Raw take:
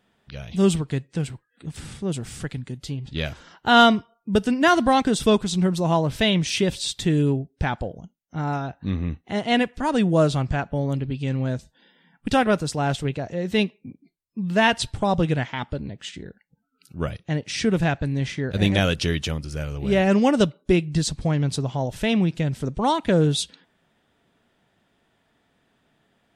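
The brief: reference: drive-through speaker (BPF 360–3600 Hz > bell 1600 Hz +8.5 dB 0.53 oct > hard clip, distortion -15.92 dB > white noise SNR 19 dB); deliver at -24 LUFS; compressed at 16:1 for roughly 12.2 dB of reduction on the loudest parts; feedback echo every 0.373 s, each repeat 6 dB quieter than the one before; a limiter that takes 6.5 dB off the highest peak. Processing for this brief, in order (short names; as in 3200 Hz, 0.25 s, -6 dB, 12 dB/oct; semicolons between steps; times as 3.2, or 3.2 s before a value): compressor 16:1, threshold -21 dBFS; limiter -18 dBFS; BPF 360–3600 Hz; bell 1600 Hz +8.5 dB 0.53 oct; feedback echo 0.373 s, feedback 50%, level -6 dB; hard clip -22 dBFS; white noise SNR 19 dB; gain +8 dB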